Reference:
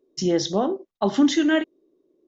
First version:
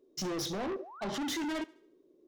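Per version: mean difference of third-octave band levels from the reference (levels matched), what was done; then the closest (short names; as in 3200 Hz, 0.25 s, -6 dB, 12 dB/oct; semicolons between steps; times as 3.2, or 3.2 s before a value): 9.5 dB: limiter -15.5 dBFS, peak gain reduction 6 dB; soft clip -33 dBFS, distortion -5 dB; painted sound rise, 0.75–1.02, 410–1600 Hz -49 dBFS; on a send: thinning echo 72 ms, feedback 45%, high-pass 280 Hz, level -21.5 dB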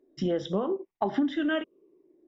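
3.5 dB: moving spectral ripple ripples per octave 0.77, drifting -0.91 Hz, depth 9 dB; compressor 6:1, threshold -24 dBFS, peak gain reduction 13.5 dB; polynomial smoothing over 25 samples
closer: second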